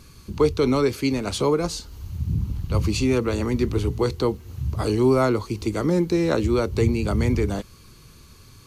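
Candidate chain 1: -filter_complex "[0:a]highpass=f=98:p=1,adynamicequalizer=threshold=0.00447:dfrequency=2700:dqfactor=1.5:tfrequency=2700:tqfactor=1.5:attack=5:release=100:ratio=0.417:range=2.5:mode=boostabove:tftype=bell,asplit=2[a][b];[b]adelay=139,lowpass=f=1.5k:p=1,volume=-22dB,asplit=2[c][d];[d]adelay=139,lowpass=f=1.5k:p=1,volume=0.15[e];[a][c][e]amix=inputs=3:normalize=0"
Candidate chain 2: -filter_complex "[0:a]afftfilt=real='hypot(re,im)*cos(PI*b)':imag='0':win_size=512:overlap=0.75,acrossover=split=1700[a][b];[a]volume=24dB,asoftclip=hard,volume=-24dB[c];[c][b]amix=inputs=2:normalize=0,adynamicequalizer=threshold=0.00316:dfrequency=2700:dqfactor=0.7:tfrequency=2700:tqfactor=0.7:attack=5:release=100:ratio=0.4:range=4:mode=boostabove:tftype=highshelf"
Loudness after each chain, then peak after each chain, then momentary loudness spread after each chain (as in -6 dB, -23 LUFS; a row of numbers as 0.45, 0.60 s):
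-23.5, -28.5 LUFS; -8.0, -8.0 dBFS; 11, 16 LU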